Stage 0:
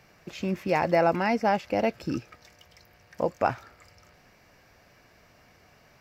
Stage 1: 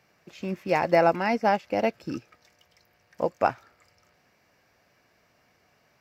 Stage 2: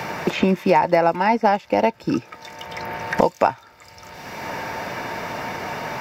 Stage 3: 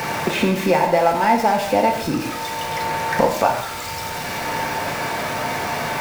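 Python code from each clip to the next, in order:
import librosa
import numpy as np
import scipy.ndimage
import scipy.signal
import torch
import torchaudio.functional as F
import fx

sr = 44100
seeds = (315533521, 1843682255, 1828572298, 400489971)

y1 = fx.highpass(x, sr, hz=130.0, slope=6)
y1 = fx.upward_expand(y1, sr, threshold_db=-38.0, expansion=1.5)
y1 = y1 * librosa.db_to_amplitude(3.0)
y2 = fx.small_body(y1, sr, hz=(910.0, 3600.0), ring_ms=60, db=13)
y2 = fx.band_squash(y2, sr, depth_pct=100)
y2 = y2 * librosa.db_to_amplitude(6.0)
y3 = y2 + 0.5 * 10.0 ** (-24.0 / 20.0) * np.sign(y2)
y3 = fx.rev_gated(y3, sr, seeds[0], gate_ms=240, shape='falling', drr_db=1.5)
y3 = y3 * librosa.db_to_amplitude(-2.5)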